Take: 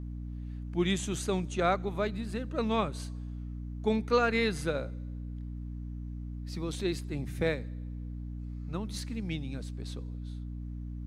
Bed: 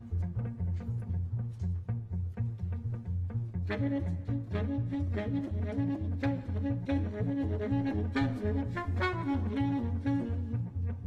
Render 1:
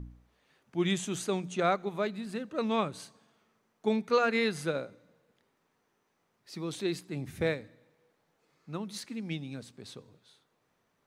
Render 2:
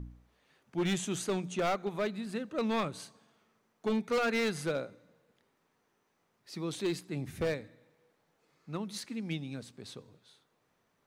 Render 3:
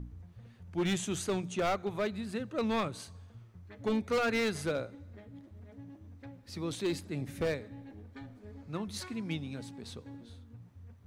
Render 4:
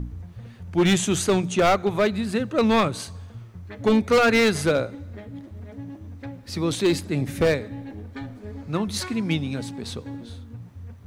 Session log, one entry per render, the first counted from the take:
de-hum 60 Hz, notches 5
hard clipper -26 dBFS, distortion -10 dB
add bed -17.5 dB
trim +12 dB

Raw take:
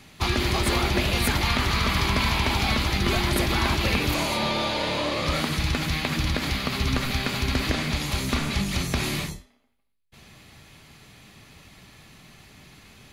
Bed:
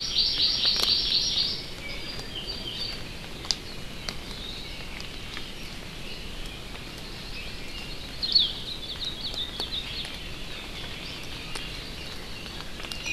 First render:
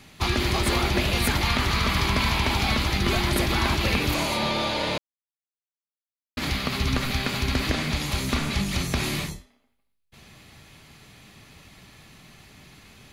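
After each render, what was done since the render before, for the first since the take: 4.98–6.37 s: mute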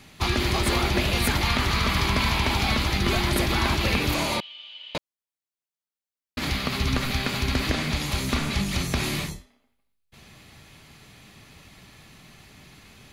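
4.40–4.95 s: band-pass filter 3 kHz, Q 19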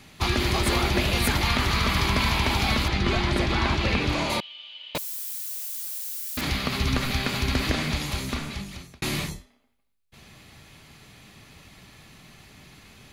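2.88–4.30 s: distance through air 83 m; 4.95–6.41 s: zero-crossing glitches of -26.5 dBFS; 7.85–9.02 s: fade out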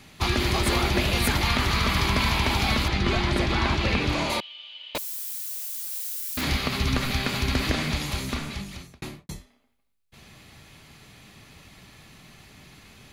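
4.31–5.32 s: peaking EQ 140 Hz -11 dB; 5.88–6.68 s: doubling 28 ms -5.5 dB; 8.83–9.29 s: studio fade out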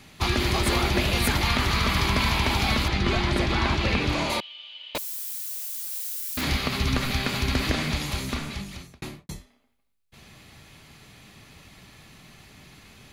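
no audible change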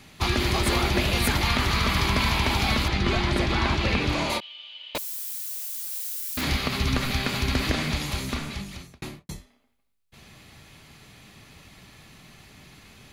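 endings held to a fixed fall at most 390 dB/s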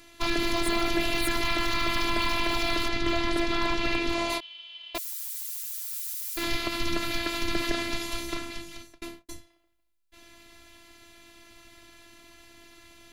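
robot voice 338 Hz; hard clipper -13 dBFS, distortion -22 dB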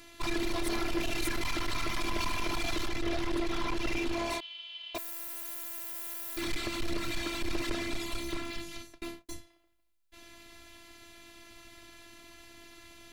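hard clipper -26 dBFS, distortion -5 dB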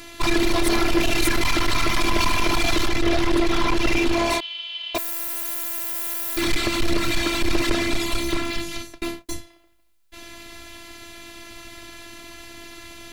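trim +12 dB

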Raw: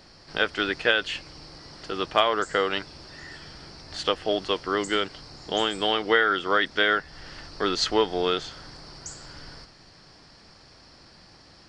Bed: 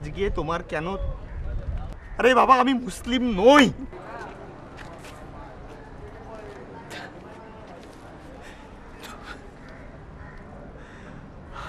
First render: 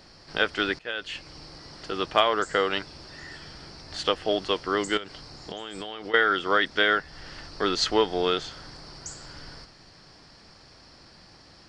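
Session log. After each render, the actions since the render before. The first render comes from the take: 0.79–1.35 s: fade in, from -23 dB; 4.97–6.14 s: compression 12:1, threshold -31 dBFS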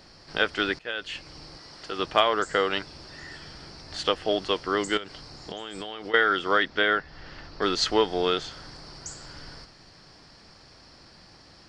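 1.57–1.99 s: bass shelf 360 Hz -7 dB; 6.63–7.62 s: distance through air 130 m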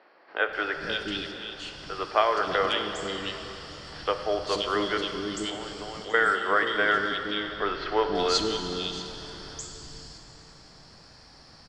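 three bands offset in time mids, lows, highs 480/530 ms, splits 350/2600 Hz; plate-style reverb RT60 3.7 s, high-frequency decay 0.9×, DRR 5.5 dB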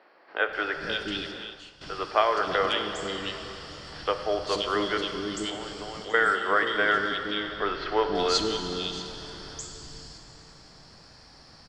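1.41–1.81 s: fade out quadratic, to -12 dB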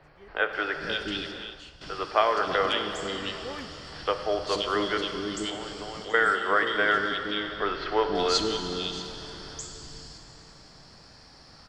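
add bed -26 dB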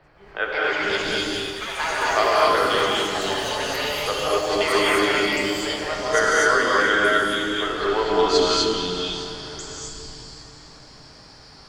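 ever faster or slower copies 266 ms, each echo +6 st, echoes 3, each echo -6 dB; gated-style reverb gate 280 ms rising, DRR -4.5 dB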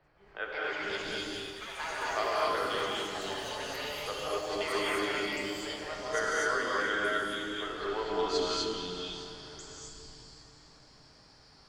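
trim -12 dB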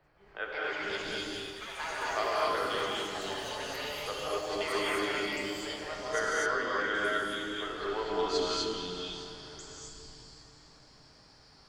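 6.46–6.95 s: distance through air 96 m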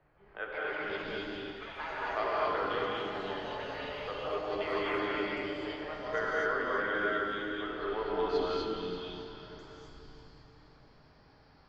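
distance through air 310 m; on a send: echo whose repeats swap between lows and highs 169 ms, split 1.6 kHz, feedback 52%, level -6 dB

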